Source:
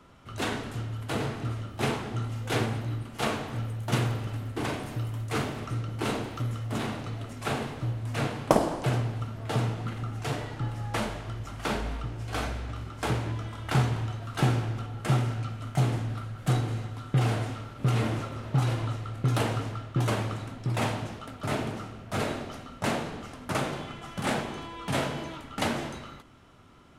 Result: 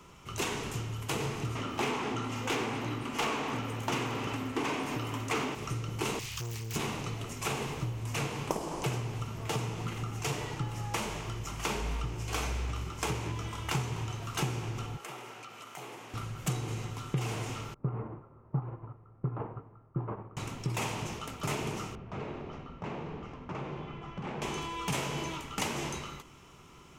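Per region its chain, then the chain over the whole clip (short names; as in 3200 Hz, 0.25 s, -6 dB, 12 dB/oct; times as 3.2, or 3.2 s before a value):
1.55–5.55 overdrive pedal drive 18 dB, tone 1900 Hz, clips at -13.5 dBFS + bell 260 Hz +13.5 dB 0.26 oct
6.19–6.76 EQ curve 130 Hz 0 dB, 230 Hz -25 dB, 890 Hz -14 dB, 1300 Hz -8 dB, 3300 Hz +6 dB + overloaded stage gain 34.5 dB + Doppler distortion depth 0.72 ms
14.96–16.14 HPF 440 Hz + dynamic EQ 6500 Hz, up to -7 dB, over -56 dBFS, Q 0.73 + compressor 3:1, threshold -45 dBFS
17.74–20.37 LPF 1300 Hz 24 dB/oct + upward expander 2.5:1, over -33 dBFS
21.95–24.42 compressor 2.5:1, threshold -36 dBFS + tape spacing loss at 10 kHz 38 dB
whole clip: high shelf 3600 Hz +9 dB; compressor, threshold -30 dBFS; ripple EQ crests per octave 0.75, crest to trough 7 dB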